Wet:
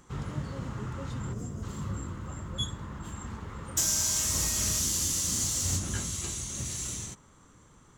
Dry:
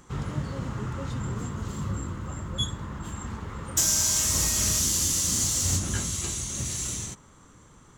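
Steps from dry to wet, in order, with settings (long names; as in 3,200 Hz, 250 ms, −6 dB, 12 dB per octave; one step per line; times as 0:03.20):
gain on a spectral selection 0:01.33–0:01.63, 770–4,800 Hz −9 dB
level −4 dB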